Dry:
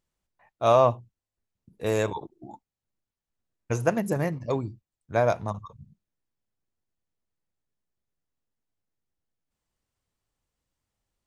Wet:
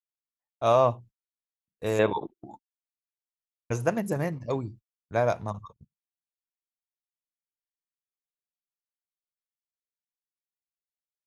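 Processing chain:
noise gate −44 dBFS, range −37 dB
0:01.99–0:02.45: drawn EQ curve 110 Hz 0 dB, 220 Hz +7 dB, 3,700 Hz +5 dB, 5,200 Hz −17 dB
level −2 dB

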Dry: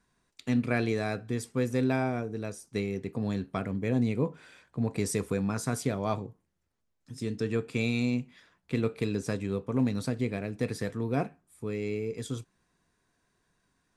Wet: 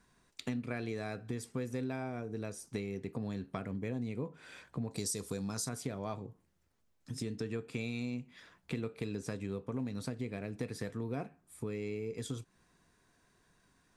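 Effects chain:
0:04.91–0:05.69: high shelf with overshoot 3,200 Hz +9.5 dB, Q 1.5
downward compressor 4 to 1, threshold −41 dBFS, peak gain reduction 17 dB
level +4 dB

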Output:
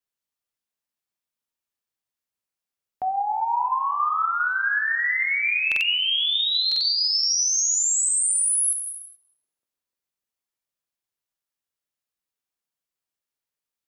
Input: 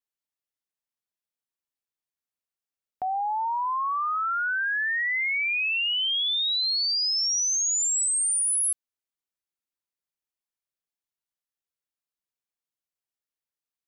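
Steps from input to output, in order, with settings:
tape delay 301 ms, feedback 59%, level −10.5 dB, low-pass 1,000 Hz
reverb whose tail is shaped and stops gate 450 ms falling, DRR 4 dB
buffer that repeats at 0:05.67/0:06.67/0:09.20, samples 2,048, times 2
level +1.5 dB

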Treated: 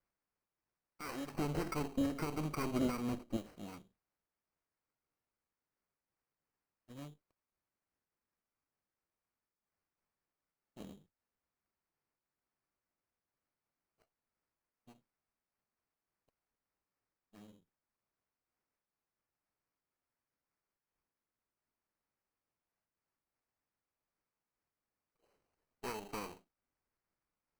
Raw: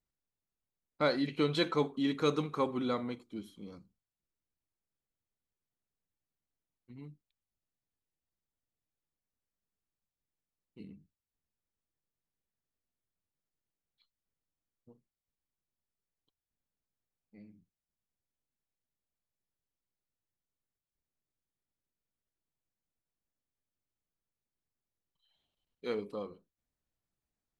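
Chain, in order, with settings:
lower of the sound and its delayed copy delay 0.77 ms
bass and treble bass −9 dB, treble −5 dB
downward compressor 4 to 1, threshold −42 dBFS, peak gain reduction 13 dB
brickwall limiter −37 dBFS, peak gain reduction 10 dB
sample-rate reduction 3,500 Hz, jitter 0%
0:01.34–0:03.37: low-shelf EQ 410 Hz +11.5 dB
amplitude modulation by smooth noise, depth 60%
level +7 dB

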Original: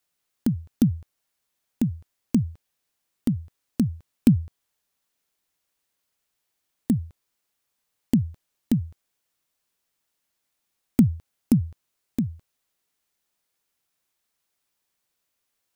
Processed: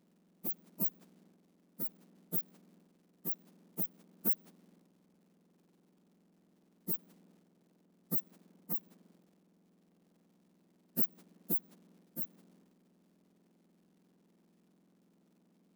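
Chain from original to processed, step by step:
frequency axis turned over on the octave scale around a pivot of 1,900 Hz
surface crackle 420 per second −66 dBFS
transient designer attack −7 dB, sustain +6 dB
level −2 dB

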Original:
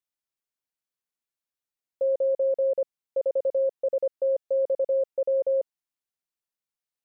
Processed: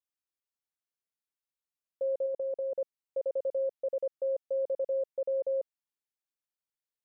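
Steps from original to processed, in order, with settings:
0:02.26–0:02.75: output level in coarse steps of 13 dB
level −6.5 dB

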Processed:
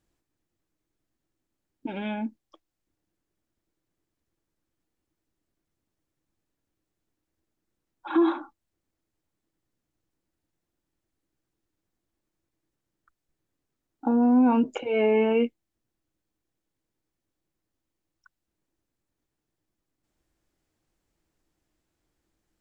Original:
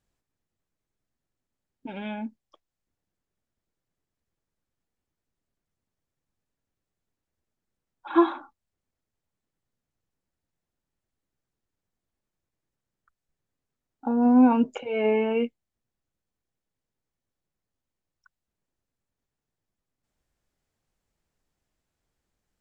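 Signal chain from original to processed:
parametric band 320 Hz +11 dB 0.28 octaves
brickwall limiter −16.5 dBFS, peak gain reduction 13.5 dB
level +2 dB

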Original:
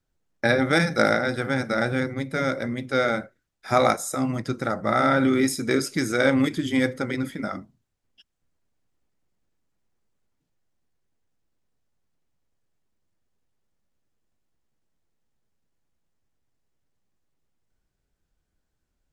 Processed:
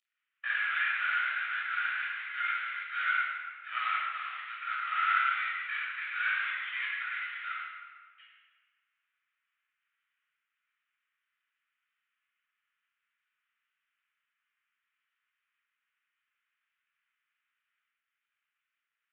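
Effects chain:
variable-slope delta modulation 16 kbit/s
Butterworth high-pass 1,400 Hz 36 dB per octave
convolution reverb RT60 1.7 s, pre-delay 17 ms, DRR −6 dB
level −7 dB

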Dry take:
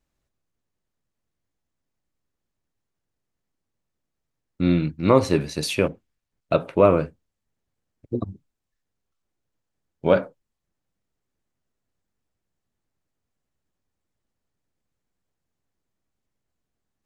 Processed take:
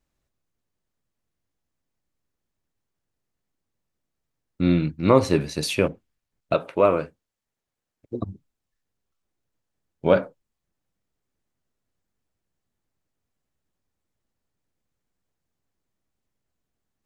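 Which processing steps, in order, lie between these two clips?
0:06.54–0:08.20: low-shelf EQ 280 Hz −10.5 dB

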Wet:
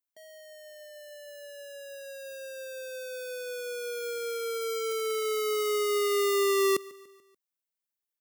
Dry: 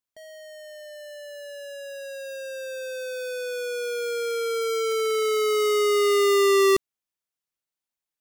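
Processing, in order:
high-pass filter 180 Hz
high-shelf EQ 11,000 Hz +10.5 dB
on a send: repeating echo 145 ms, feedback 52%, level −22 dB
on the sum: level −6.5 dB

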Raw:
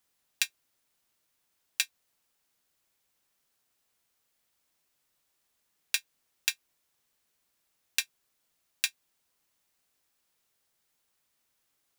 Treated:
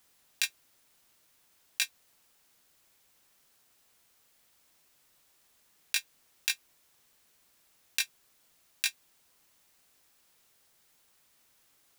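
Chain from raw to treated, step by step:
compressor whose output falls as the input rises −29 dBFS, ratio −0.5
level +4.5 dB

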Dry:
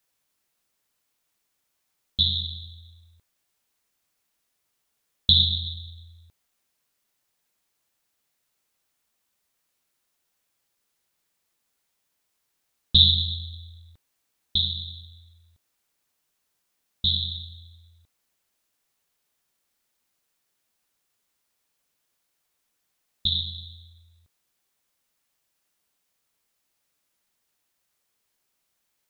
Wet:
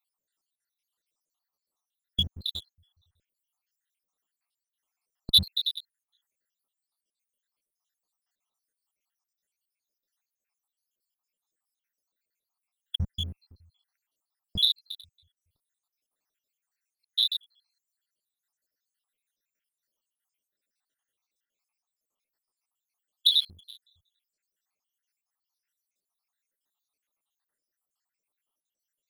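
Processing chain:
time-frequency cells dropped at random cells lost 80%
parametric band 71 Hz −10.5 dB 2.8 octaves
leveller curve on the samples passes 2

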